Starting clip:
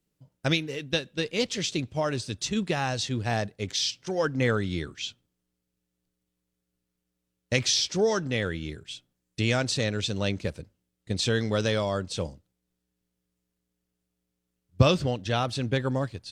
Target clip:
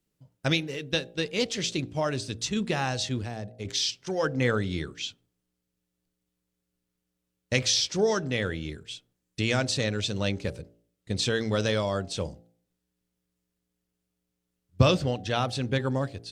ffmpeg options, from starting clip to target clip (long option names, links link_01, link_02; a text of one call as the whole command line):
ffmpeg -i in.wav -filter_complex "[0:a]bandreject=frequency=57.27:width_type=h:width=4,bandreject=frequency=114.54:width_type=h:width=4,bandreject=frequency=171.81:width_type=h:width=4,bandreject=frequency=229.08:width_type=h:width=4,bandreject=frequency=286.35:width_type=h:width=4,bandreject=frequency=343.62:width_type=h:width=4,bandreject=frequency=400.89:width_type=h:width=4,bandreject=frequency=458.16:width_type=h:width=4,bandreject=frequency=515.43:width_type=h:width=4,bandreject=frequency=572.7:width_type=h:width=4,bandreject=frequency=629.97:width_type=h:width=4,bandreject=frequency=687.24:width_type=h:width=4,bandreject=frequency=744.51:width_type=h:width=4,bandreject=frequency=801.78:width_type=h:width=4,asettb=1/sr,asplit=3[link_01][link_02][link_03];[link_01]atrim=end=3.234[link_04];[link_02]atrim=start=3.23:end=3.65,asetpts=PTS-STARTPTS,afade=type=in:duration=0.004:curve=qsin,afade=type=out:start_time=0.416:duration=0.004:curve=qsin,acrossover=split=570|4900[link_05][link_06][link_07];[link_05]acompressor=threshold=-34dB:ratio=4[link_08];[link_06]acompressor=threshold=-45dB:ratio=4[link_09];[link_07]acompressor=threshold=-58dB:ratio=4[link_10];[link_08][link_09][link_10]amix=inputs=3:normalize=0[link_11];[link_03]atrim=start=3.646[link_12];[link_04][link_11]acrossfade=duration=0.004:curve1=hsin:curve2=qsin[link_13];[link_13][link_12]acrossfade=duration=0.004:curve1=qsin:curve2=hsin" out.wav